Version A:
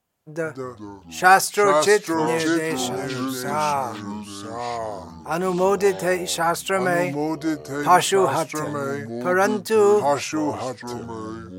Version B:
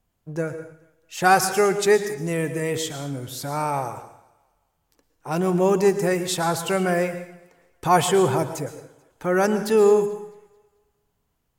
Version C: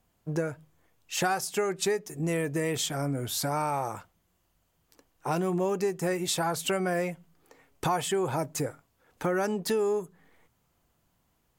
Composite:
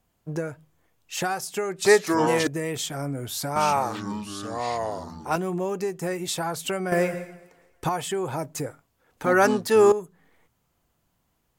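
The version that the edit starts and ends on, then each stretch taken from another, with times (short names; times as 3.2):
C
1.85–2.47 from A
3.56–5.36 from A
6.92–7.89 from B
9.26–9.92 from A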